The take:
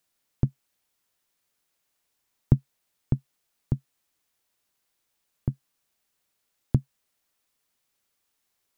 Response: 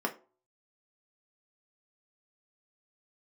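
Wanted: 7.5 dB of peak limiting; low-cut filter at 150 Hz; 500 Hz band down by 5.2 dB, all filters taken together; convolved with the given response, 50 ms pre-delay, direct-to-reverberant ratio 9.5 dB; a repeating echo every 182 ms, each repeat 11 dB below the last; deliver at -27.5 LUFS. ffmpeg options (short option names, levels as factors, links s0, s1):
-filter_complex "[0:a]highpass=150,equalizer=f=500:t=o:g=-7.5,alimiter=limit=0.133:level=0:latency=1,aecho=1:1:182|364|546:0.282|0.0789|0.0221,asplit=2[s0][s1];[1:a]atrim=start_sample=2205,adelay=50[s2];[s1][s2]afir=irnorm=-1:irlink=0,volume=0.15[s3];[s0][s3]amix=inputs=2:normalize=0,volume=3.76"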